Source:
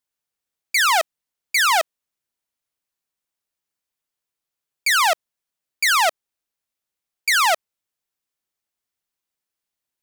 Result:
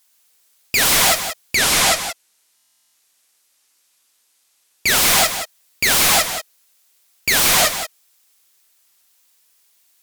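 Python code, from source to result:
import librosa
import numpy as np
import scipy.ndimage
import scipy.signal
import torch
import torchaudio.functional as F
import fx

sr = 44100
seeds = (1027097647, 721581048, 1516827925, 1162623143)

y = fx.high_shelf(x, sr, hz=2700.0, db=11.0)
y = fx.quant_companded(y, sr, bits=8)
y = fx.highpass(y, sr, hz=460.0, slope=6)
y = fx.rev_gated(y, sr, seeds[0], gate_ms=150, shape='rising', drr_db=7.5)
y = fx.fold_sine(y, sr, drive_db=15, ceiling_db=-7.0)
y = fx.lowpass(y, sr, hz=12000.0, slope=12, at=(1.55, 4.88))
y = y + 10.0 ** (-10.0 / 20.0) * np.pad(y, (int(178 * sr / 1000.0), 0))[:len(y)]
y = fx.buffer_glitch(y, sr, at_s=(2.55,), block=1024, repeats=16)
y = fx.record_warp(y, sr, rpm=45.0, depth_cents=100.0)
y = y * librosa.db_to_amplitude(-4.0)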